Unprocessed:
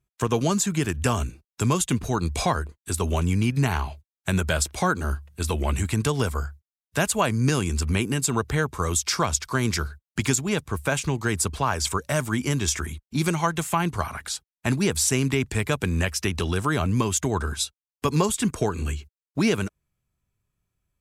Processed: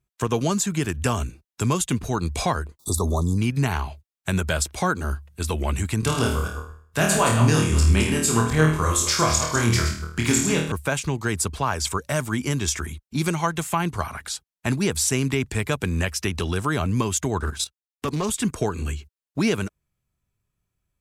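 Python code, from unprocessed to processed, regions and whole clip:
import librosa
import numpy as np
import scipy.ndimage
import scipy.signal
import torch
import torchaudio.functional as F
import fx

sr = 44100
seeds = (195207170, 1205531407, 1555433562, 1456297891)

y = fx.chain(x, sr, fx.brickwall_bandstop(low_hz=1300.0, high_hz=3400.0),
    fx.env_flatten(amount_pct=70), at=(2.79, 3.38))
y = fx.chain(y, sr, fx.reverse_delay(ms=119, wet_db=-6.5),
    fx.room_flutter(wall_m=4.4, rt60_s=0.51), at=(6.0, 10.72))
y = fx.chain(y, sr, fx.leveller(passes=1),
    fx.level_steps(step_db=12),
    fx.doppler_dist(depth_ms=0.17), at=(17.4, 18.3))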